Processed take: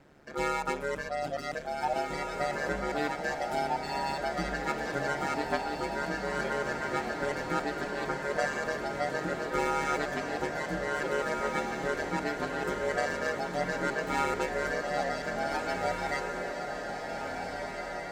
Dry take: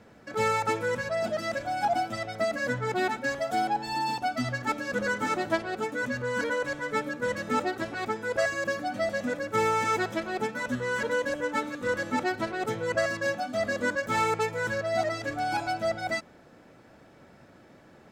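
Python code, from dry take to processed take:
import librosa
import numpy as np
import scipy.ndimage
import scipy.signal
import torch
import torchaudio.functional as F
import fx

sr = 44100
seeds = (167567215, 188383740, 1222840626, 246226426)

y = x * np.sin(2.0 * np.pi * 72.0 * np.arange(len(x)) / sr)
y = fx.echo_diffused(y, sr, ms=1741, feedback_pct=56, wet_db=-4)
y = y * librosa.db_to_amplitude(-1.5)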